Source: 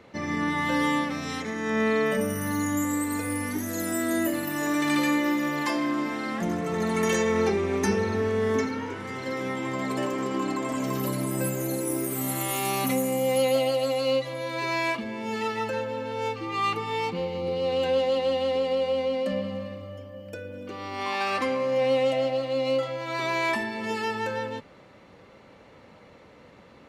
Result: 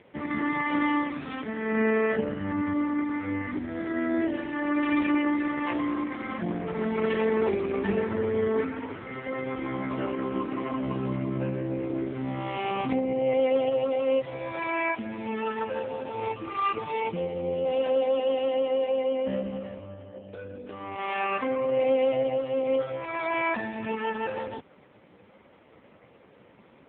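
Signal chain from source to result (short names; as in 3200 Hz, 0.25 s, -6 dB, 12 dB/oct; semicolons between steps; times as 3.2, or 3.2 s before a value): AMR-NB 4.75 kbps 8000 Hz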